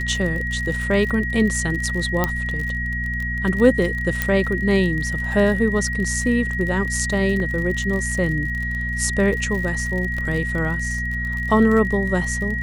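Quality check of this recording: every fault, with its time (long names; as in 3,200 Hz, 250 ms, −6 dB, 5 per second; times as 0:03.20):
surface crackle 40 per second −26 dBFS
mains hum 60 Hz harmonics 4 −27 dBFS
whistle 1,900 Hz −25 dBFS
0:02.24: click −5 dBFS
0:04.22: click −6 dBFS
0:07.40: drop-out 2 ms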